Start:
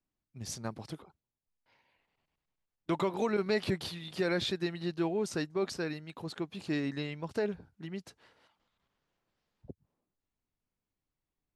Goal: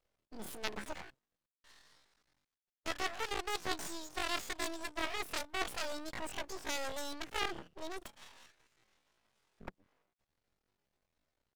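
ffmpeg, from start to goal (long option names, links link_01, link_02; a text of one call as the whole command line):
ffmpeg -i in.wav -af "aeval=exprs='0.126*(cos(1*acos(clip(val(0)/0.126,-1,1)))-cos(1*PI/2))+0.0447*(cos(7*acos(clip(val(0)/0.126,-1,1)))-cos(7*PI/2))+0.00891*(cos(8*acos(clip(val(0)/0.126,-1,1)))-cos(8*PI/2))':channel_layout=same,areverse,acompressor=threshold=-38dB:ratio=6,areverse,bass=frequency=250:gain=-5,treble=frequency=4000:gain=-11,asetrate=85689,aresample=44100,atempo=0.514651,aeval=exprs='max(val(0),0)':channel_layout=same,volume=9.5dB" out.wav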